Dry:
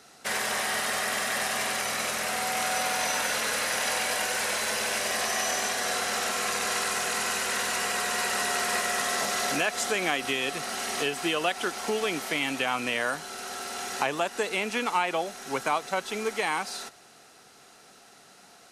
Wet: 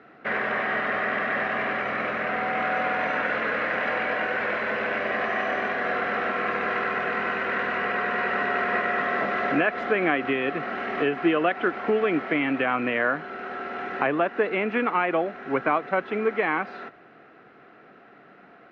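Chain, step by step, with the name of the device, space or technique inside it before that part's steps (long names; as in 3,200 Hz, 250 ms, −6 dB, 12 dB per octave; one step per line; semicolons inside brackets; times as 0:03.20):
bass cabinet (loudspeaker in its box 61–2,100 Hz, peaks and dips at 93 Hz −9 dB, 310 Hz +5 dB, 880 Hz −8 dB)
level +6 dB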